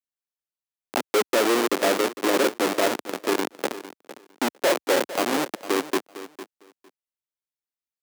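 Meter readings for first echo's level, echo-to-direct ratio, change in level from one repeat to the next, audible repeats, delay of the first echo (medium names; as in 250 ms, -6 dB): -14.5 dB, -14.5 dB, -16.0 dB, 2, 455 ms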